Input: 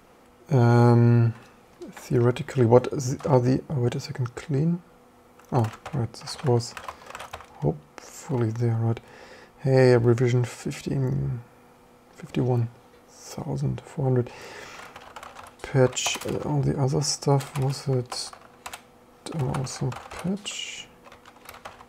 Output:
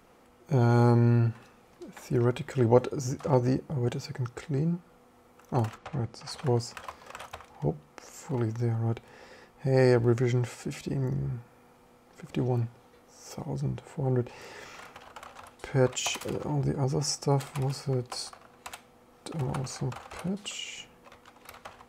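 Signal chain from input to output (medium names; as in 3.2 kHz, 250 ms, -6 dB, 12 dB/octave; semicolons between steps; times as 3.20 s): 5.77–6.30 s: low-pass 5.4 kHz -> 9.6 kHz 12 dB/octave; trim -4.5 dB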